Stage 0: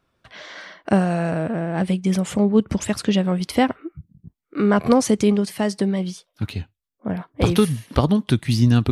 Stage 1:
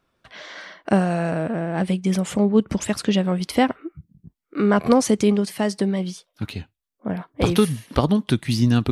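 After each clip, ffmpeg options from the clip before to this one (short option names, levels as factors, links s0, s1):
-af "equalizer=f=93:t=o:w=1.1:g=-5"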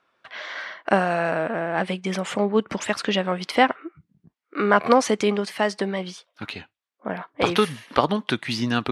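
-af "bandpass=f=1500:t=q:w=0.61:csg=0,volume=2"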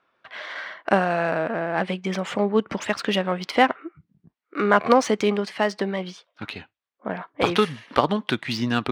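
-af "adynamicsmooth=sensitivity=3:basefreq=5700"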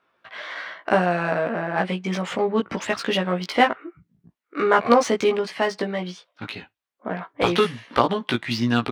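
-filter_complex "[0:a]asplit=2[s0][s1];[s1]adelay=17,volume=0.708[s2];[s0][s2]amix=inputs=2:normalize=0,volume=0.891"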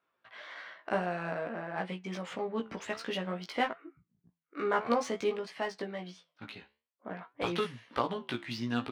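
-af "flanger=delay=5.7:depth=9.5:regen=78:speed=0.53:shape=triangular,volume=0.398"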